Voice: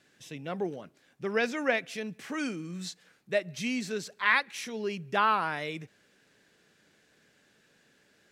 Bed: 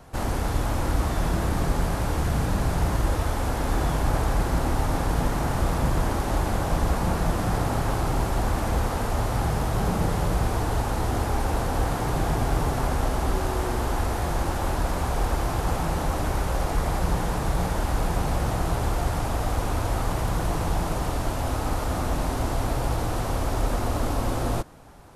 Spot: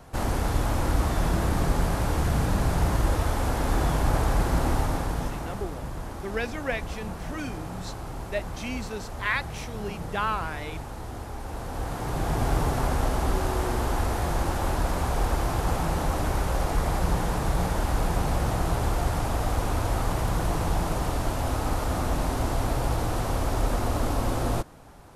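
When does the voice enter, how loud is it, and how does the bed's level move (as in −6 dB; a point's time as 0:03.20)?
5.00 s, −2.5 dB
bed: 0:04.74 0 dB
0:05.72 −11.5 dB
0:11.39 −11.5 dB
0:12.47 −0.5 dB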